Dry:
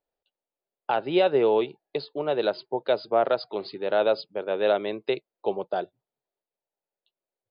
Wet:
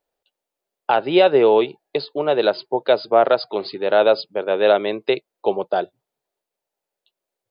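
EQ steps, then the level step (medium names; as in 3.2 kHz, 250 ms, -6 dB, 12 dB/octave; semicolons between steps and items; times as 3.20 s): bass shelf 230 Hz -4.5 dB; +8.0 dB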